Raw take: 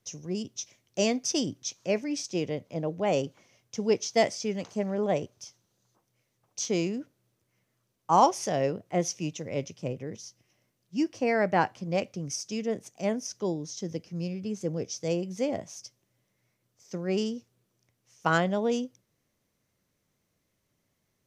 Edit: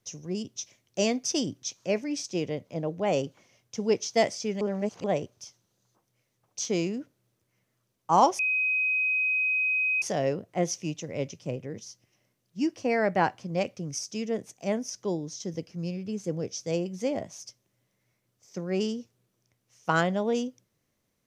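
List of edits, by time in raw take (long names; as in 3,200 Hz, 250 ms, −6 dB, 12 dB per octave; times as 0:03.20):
0:04.61–0:05.04: reverse
0:08.39: insert tone 2,520 Hz −23 dBFS 1.63 s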